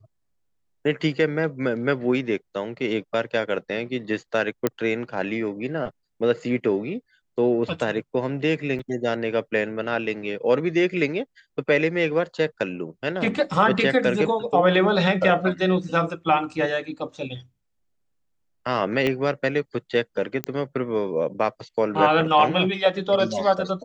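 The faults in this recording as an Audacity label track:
4.670000	4.670000	pop -8 dBFS
8.790000	8.790000	gap 4.9 ms
19.070000	19.070000	pop -12 dBFS
20.440000	20.440000	pop -10 dBFS

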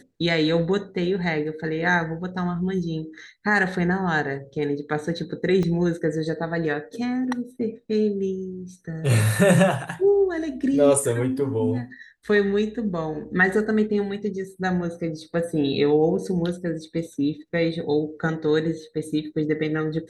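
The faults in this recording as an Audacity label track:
5.630000	5.630000	gap 2.5 ms

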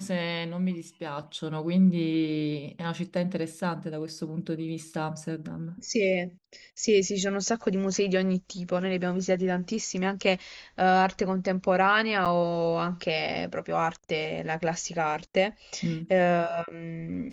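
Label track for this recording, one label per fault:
12.250000	12.260000	gap 7.1 ms

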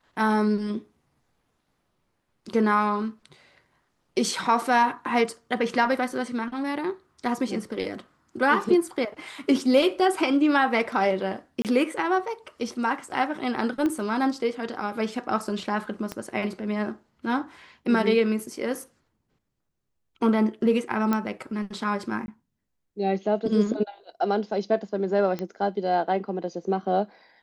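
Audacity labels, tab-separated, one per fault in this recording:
11.620000	11.650000	gap 28 ms
13.860000	13.860000	pop -16 dBFS
16.120000	16.120000	pop -17 dBFS
21.130000	21.130000	pop -12 dBFS
22.260000	22.280000	gap 21 ms
25.390000	25.390000	pop -18 dBFS

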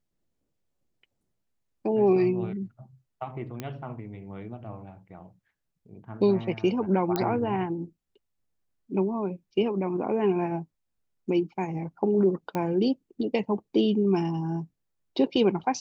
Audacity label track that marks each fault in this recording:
3.600000	3.600000	pop -19 dBFS
7.160000	7.160000	pop -13 dBFS
12.550000	12.550000	pop -17 dBFS

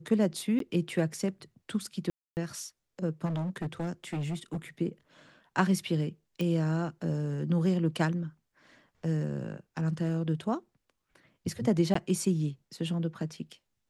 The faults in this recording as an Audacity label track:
0.590000	0.600000	gap 13 ms
2.100000	2.370000	gap 0.269 s
3.250000	4.570000	clipped -29.5 dBFS
6.410000	6.410000	pop -21 dBFS
11.940000	11.950000	gap 14 ms

